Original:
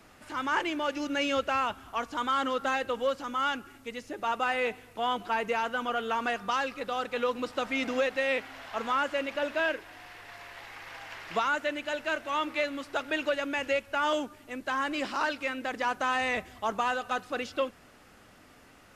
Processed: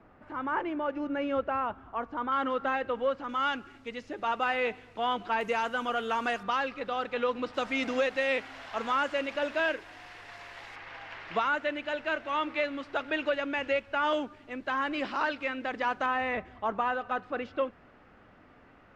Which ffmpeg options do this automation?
ffmpeg -i in.wav -af "asetnsamples=nb_out_samples=441:pad=0,asendcmd='2.32 lowpass f 2200;3.29 lowpass f 4400;5.41 lowpass f 9600;6.43 lowpass f 3700;7.54 lowpass f 7300;10.76 lowpass f 3500;16.06 lowpass f 2000',lowpass=1300" out.wav

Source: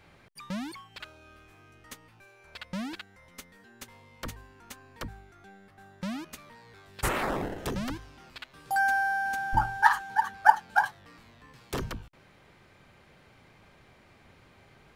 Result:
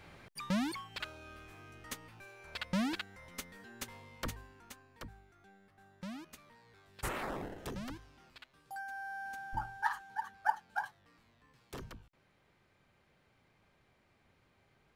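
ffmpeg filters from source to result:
ffmpeg -i in.wav -af "volume=9dB,afade=type=out:start_time=3.83:duration=1.05:silence=0.266073,afade=type=out:start_time=8.23:duration=0.63:silence=0.298538,afade=type=in:start_time=8.86:duration=0.37:silence=0.446684" out.wav

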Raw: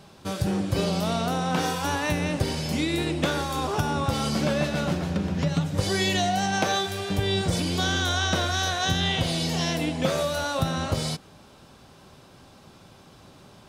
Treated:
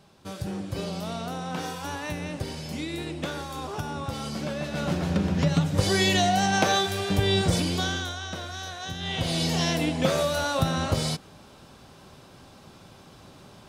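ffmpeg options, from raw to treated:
ffmpeg -i in.wav -af "volume=13.5dB,afade=type=in:start_time=4.63:duration=0.5:silence=0.354813,afade=type=out:start_time=7.5:duration=0.66:silence=0.237137,afade=type=in:start_time=8.99:duration=0.42:silence=0.266073" out.wav

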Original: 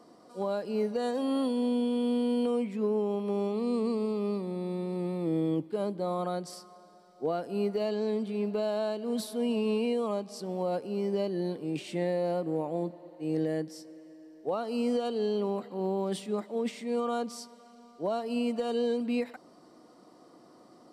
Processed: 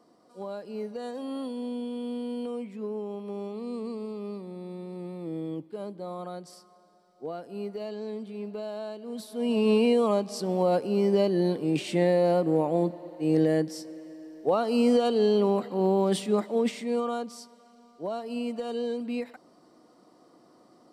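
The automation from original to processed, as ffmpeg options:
ffmpeg -i in.wav -af "volume=7dB,afade=type=in:start_time=9.28:duration=0.44:silence=0.237137,afade=type=out:start_time=16.46:duration=0.8:silence=0.354813" out.wav

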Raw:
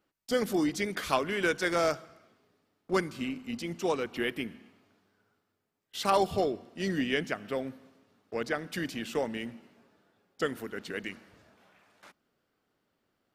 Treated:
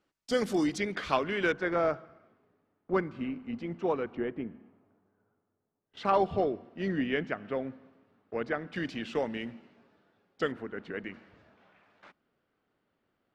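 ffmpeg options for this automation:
ffmpeg -i in.wav -af "asetnsamples=nb_out_samples=441:pad=0,asendcmd='0.78 lowpass f 3800;1.52 lowpass f 1700;4.15 lowpass f 1000;5.97 lowpass f 2200;8.76 lowpass f 4000;10.52 lowpass f 1900;11.14 lowpass f 3200',lowpass=8200" out.wav

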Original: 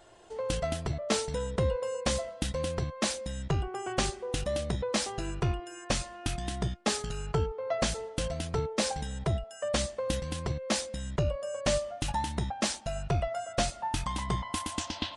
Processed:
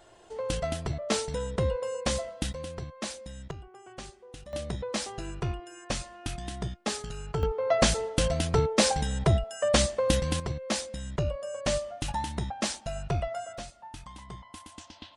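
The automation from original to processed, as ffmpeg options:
ffmpeg -i in.wav -af "asetnsamples=nb_out_samples=441:pad=0,asendcmd='2.53 volume volume -6dB;3.51 volume volume -14dB;4.53 volume volume -2.5dB;7.43 volume volume 6.5dB;10.4 volume volume -0.5dB;13.58 volume volume -12.5dB',volume=0.5dB" out.wav

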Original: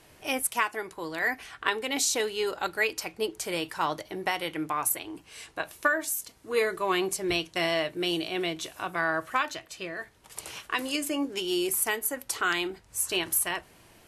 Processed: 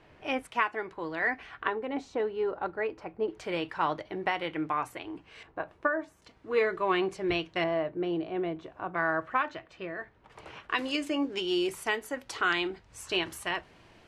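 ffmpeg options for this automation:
ffmpeg -i in.wav -af "asetnsamples=nb_out_samples=441:pad=0,asendcmd='1.68 lowpass f 1100;3.28 lowpass f 2600;5.43 lowpass f 1200;6.22 lowpass f 2600;7.64 lowpass f 1100;8.94 lowpass f 1900;10.69 lowpass f 4100',lowpass=2500" out.wav

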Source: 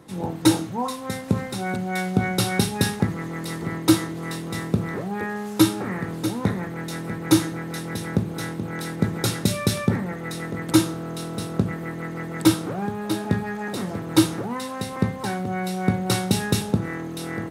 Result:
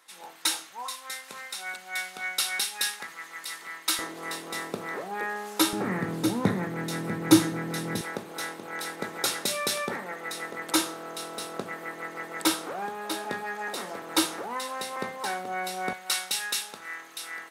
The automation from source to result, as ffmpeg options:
ffmpeg -i in.wav -af "asetnsamples=nb_out_samples=441:pad=0,asendcmd='3.99 highpass f 530;5.73 highpass f 150;8.01 highpass f 580;15.93 highpass f 1400',highpass=1500" out.wav

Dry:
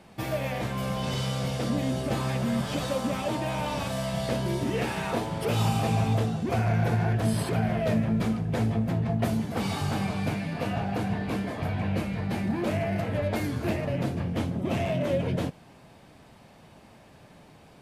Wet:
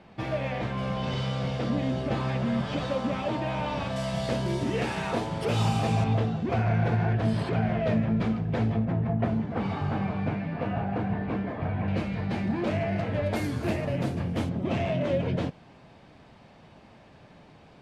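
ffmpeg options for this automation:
ffmpeg -i in.wav -af "asetnsamples=nb_out_samples=441:pad=0,asendcmd='3.96 lowpass f 7600;6.04 lowpass f 3700;8.85 lowpass f 2000;11.88 lowpass f 5100;13.26 lowpass f 11000;14.49 lowpass f 4900',lowpass=3700" out.wav

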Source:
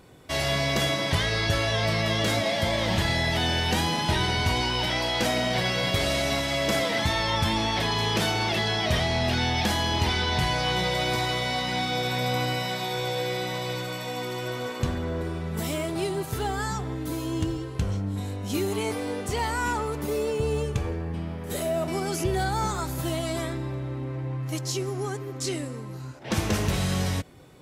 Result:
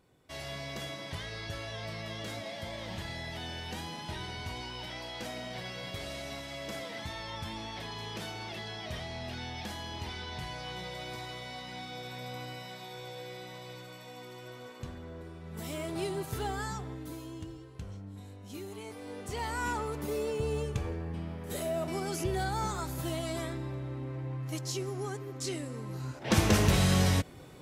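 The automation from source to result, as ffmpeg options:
ffmpeg -i in.wav -af "volume=10.5dB,afade=type=in:start_time=15.4:duration=0.59:silence=0.354813,afade=type=out:start_time=16.49:duration=0.91:silence=0.334965,afade=type=in:start_time=18.94:duration=0.71:silence=0.334965,afade=type=in:start_time=25.64:duration=0.54:silence=0.446684" out.wav

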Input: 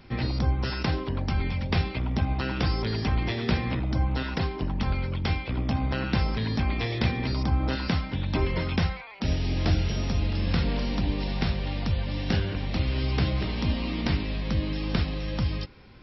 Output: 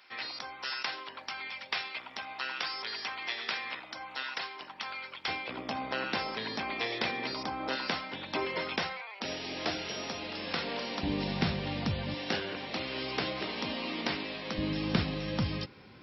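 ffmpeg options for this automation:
ffmpeg -i in.wav -af "asetnsamples=nb_out_samples=441:pad=0,asendcmd='5.28 highpass f 450;11.03 highpass f 140;12.14 highpass f 380;14.58 highpass f 130',highpass=1100" out.wav

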